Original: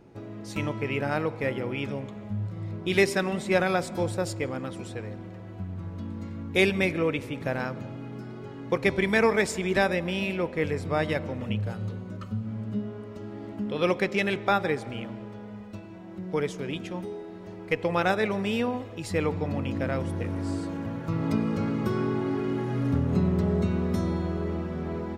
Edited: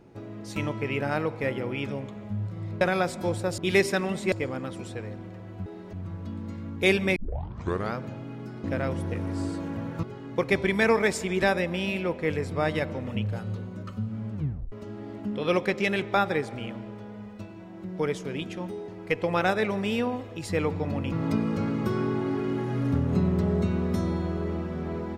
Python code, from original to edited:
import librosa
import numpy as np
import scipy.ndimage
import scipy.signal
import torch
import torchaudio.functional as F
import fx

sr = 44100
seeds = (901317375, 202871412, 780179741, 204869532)

y = fx.edit(x, sr, fx.move(start_s=2.81, length_s=0.74, to_s=4.32),
    fx.tape_start(start_s=6.89, length_s=0.83),
    fx.tape_stop(start_s=12.67, length_s=0.39),
    fx.move(start_s=17.22, length_s=0.27, to_s=5.66),
    fx.move(start_s=19.73, length_s=1.39, to_s=8.37), tone=tone)